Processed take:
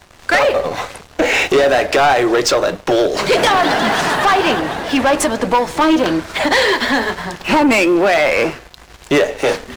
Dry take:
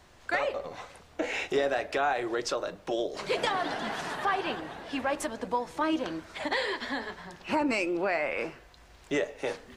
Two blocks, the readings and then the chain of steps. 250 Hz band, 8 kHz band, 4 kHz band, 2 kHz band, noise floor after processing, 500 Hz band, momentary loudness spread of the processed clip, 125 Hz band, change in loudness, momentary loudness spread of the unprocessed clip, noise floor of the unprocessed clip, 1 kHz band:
+17.0 dB, +19.0 dB, +17.5 dB, +16.5 dB, −43 dBFS, +16.5 dB, 7 LU, +18.5 dB, +16.5 dB, 8 LU, −56 dBFS, +16.0 dB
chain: leveller curve on the samples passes 3
level +8.5 dB

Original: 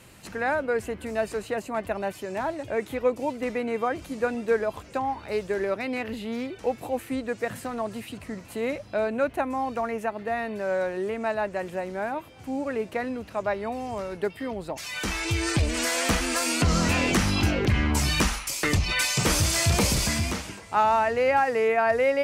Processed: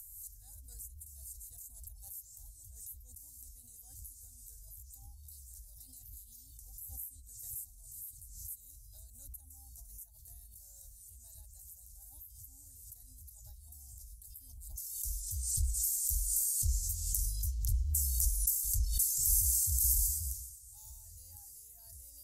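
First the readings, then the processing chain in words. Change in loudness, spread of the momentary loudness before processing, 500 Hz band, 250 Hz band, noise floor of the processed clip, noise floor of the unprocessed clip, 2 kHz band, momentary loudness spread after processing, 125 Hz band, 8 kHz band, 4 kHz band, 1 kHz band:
−5.5 dB, 10 LU, below −40 dB, below −35 dB, −56 dBFS, −46 dBFS, below −40 dB, 22 LU, −11.5 dB, −2.5 dB, −20.0 dB, below −40 dB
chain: inverse Chebyshev band-stop filter 190–2,500 Hz, stop band 60 dB
parametric band 13,000 Hz +13 dB 0.37 octaves
upward compression, threshold −43 dBFS
hollow resonant body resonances 270/790/1,300 Hz, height 13 dB, ringing for 25 ms
background raised ahead of every attack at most 44 dB per second
level −2.5 dB

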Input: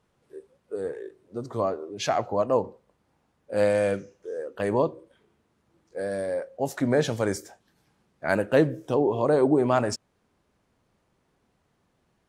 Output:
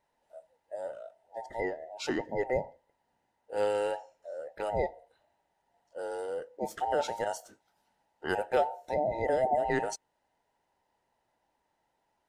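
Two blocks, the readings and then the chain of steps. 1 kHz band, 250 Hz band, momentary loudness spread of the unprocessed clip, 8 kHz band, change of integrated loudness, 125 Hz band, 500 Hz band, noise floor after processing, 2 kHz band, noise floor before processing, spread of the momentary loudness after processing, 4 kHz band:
−2.0 dB, −13.0 dB, 14 LU, −6.5 dB, −7.0 dB, −14.0 dB, −7.0 dB, −78 dBFS, −5.0 dB, −71 dBFS, 14 LU, −6.5 dB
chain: frequency inversion band by band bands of 1,000 Hz
level −7 dB

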